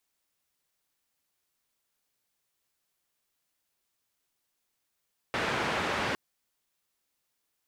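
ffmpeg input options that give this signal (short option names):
-f lavfi -i "anoisesrc=c=white:d=0.81:r=44100:seed=1,highpass=f=81,lowpass=f=1900,volume=-15.3dB"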